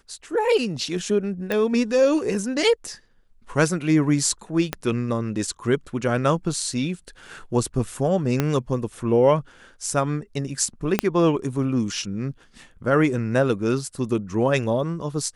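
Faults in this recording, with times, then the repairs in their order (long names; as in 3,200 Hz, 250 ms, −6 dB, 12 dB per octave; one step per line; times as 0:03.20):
0:01.52: click −12 dBFS
0:04.73: click −9 dBFS
0:08.40: click −7 dBFS
0:10.99: click −4 dBFS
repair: click removal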